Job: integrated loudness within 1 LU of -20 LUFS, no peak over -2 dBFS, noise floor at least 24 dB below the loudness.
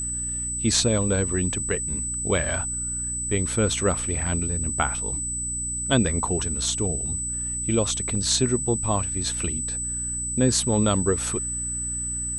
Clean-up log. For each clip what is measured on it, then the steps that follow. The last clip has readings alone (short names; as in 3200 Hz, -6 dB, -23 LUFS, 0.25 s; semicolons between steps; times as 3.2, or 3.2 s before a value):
hum 60 Hz; harmonics up to 300 Hz; hum level -33 dBFS; steady tone 8000 Hz; tone level -27 dBFS; loudness -24.0 LUFS; peak -6.0 dBFS; loudness target -20.0 LUFS
-> de-hum 60 Hz, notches 5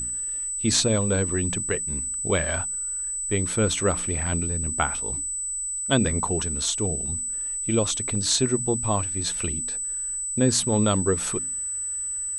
hum none; steady tone 8000 Hz; tone level -27 dBFS
-> notch 8000 Hz, Q 30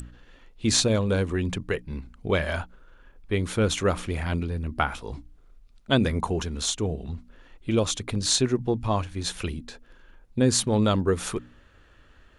steady tone none; loudness -26.0 LUFS; peak -6.5 dBFS; loudness target -20.0 LUFS
-> gain +6 dB; limiter -2 dBFS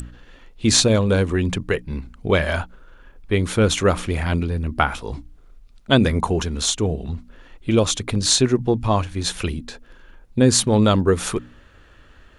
loudness -20.0 LUFS; peak -2.0 dBFS; noise floor -50 dBFS